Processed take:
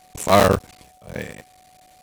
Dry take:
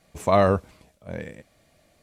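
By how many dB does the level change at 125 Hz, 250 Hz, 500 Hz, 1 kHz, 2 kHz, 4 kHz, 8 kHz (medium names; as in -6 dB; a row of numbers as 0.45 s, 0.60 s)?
+2.5 dB, +3.5 dB, +3.0 dB, +4.5 dB, +7.5 dB, +12.0 dB, no reading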